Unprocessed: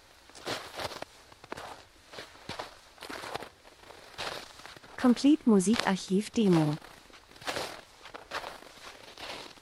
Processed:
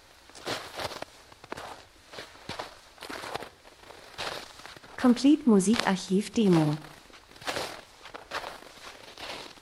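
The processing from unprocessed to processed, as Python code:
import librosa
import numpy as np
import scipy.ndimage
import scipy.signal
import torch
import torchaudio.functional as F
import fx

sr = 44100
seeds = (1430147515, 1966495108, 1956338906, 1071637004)

y = fx.echo_feedback(x, sr, ms=60, feedback_pct=55, wet_db=-22.0)
y = F.gain(torch.from_numpy(y), 2.0).numpy()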